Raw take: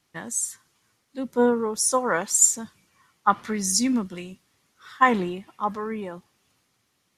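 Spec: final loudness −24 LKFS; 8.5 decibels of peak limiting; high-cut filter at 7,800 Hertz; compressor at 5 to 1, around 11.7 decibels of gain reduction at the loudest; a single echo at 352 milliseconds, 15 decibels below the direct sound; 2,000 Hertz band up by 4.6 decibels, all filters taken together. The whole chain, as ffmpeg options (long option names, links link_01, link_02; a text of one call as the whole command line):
ffmpeg -i in.wav -af "lowpass=7800,equalizer=frequency=2000:width_type=o:gain=5.5,acompressor=threshold=-24dB:ratio=5,alimiter=limit=-20.5dB:level=0:latency=1,aecho=1:1:352:0.178,volume=8dB" out.wav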